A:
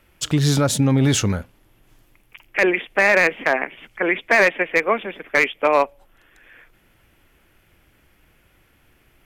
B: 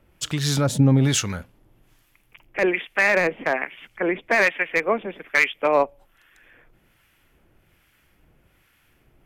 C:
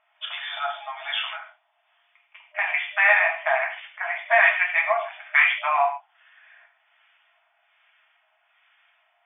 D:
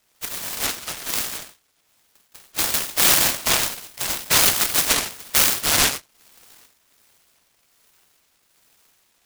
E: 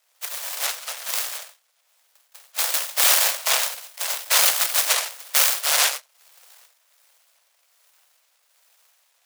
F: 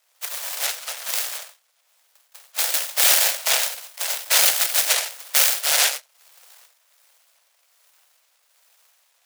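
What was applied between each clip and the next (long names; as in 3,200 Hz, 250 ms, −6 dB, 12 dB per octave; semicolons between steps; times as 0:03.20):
parametric band 150 Hz +3 dB 0.77 octaves; two-band tremolo in antiphase 1.2 Hz, depth 70%, crossover 1,000 Hz
reverb whose tail is shaped and stops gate 180 ms falling, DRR −1.5 dB; brick-wall band-pass 610–3,600 Hz; level −1.5 dB
in parallel at +2 dB: brickwall limiter −11.5 dBFS, peak gain reduction 7 dB; on the sum: short delay modulated by noise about 2,500 Hz, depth 0.47 ms; level −4 dB
Butterworth high-pass 490 Hz 72 dB per octave; level −1 dB
dynamic equaliser 1,100 Hz, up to −7 dB, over −44 dBFS, Q 3.4; level +1 dB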